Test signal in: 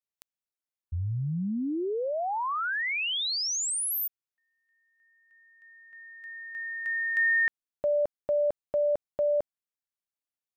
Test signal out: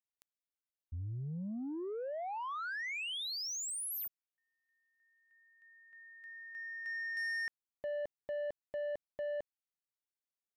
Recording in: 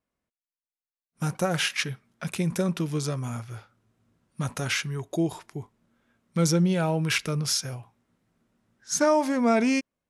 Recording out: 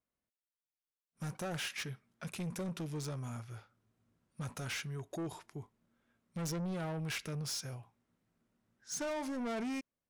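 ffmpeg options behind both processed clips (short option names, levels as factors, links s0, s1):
-af "asoftclip=type=tanh:threshold=0.0447,volume=0.398"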